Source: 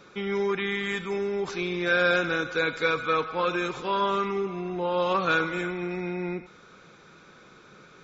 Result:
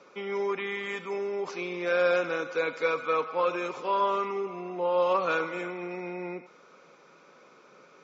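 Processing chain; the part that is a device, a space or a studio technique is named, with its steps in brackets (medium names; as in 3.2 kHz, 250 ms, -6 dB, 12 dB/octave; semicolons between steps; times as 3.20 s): television speaker (cabinet simulation 190–6600 Hz, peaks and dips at 200 Hz -7 dB, 330 Hz -4 dB, 560 Hz +5 dB, 1 kHz +3 dB, 1.6 kHz -7 dB, 3.7 kHz -9 dB); trim -2 dB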